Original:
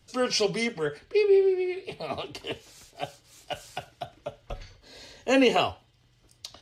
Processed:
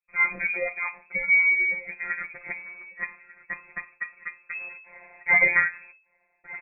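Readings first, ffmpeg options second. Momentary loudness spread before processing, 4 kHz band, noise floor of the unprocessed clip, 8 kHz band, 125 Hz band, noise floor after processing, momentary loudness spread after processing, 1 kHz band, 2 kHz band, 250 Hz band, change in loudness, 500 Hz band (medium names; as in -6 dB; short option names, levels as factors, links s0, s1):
21 LU, under -40 dB, -63 dBFS, under -40 dB, no reading, -70 dBFS, 20 LU, -4.0 dB, +14.0 dB, -19.0 dB, +2.5 dB, -14.0 dB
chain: -af "agate=range=0.0251:threshold=0.00224:ratio=16:detection=peak,areverse,acompressor=mode=upward:threshold=0.0126:ratio=2.5,areverse,afftfilt=real='hypot(re,im)*cos(PI*b)':imag='0':win_size=1024:overlap=0.75,aecho=1:1:1194:0.0944,lowpass=f=2200:t=q:w=0.5098,lowpass=f=2200:t=q:w=0.6013,lowpass=f=2200:t=q:w=0.9,lowpass=f=2200:t=q:w=2.563,afreqshift=-2600,volume=2"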